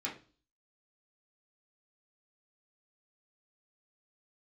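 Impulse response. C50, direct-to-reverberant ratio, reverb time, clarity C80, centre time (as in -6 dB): 9.5 dB, -5.0 dB, 0.35 s, 15.5 dB, 23 ms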